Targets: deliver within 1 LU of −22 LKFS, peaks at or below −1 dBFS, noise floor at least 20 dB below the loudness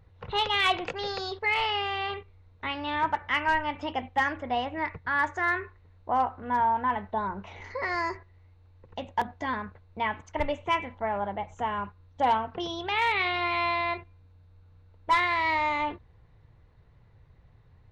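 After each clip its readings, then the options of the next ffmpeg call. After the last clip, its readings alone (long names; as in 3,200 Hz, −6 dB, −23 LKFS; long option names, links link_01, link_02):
integrated loudness −28.5 LKFS; sample peak −16.5 dBFS; target loudness −22.0 LKFS
→ -af "volume=6.5dB"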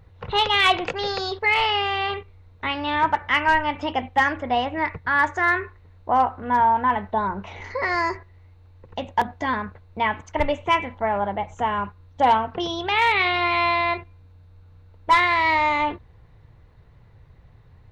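integrated loudness −22.0 LKFS; sample peak −10.0 dBFS; background noise floor −52 dBFS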